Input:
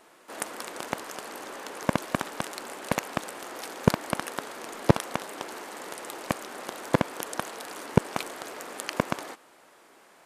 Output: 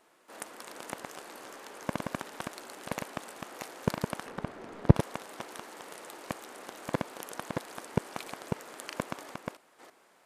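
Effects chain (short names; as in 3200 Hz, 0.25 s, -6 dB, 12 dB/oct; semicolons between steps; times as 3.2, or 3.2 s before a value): reverse delay 0.33 s, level -4 dB; 4.26–4.96 RIAA curve playback; gain -8.5 dB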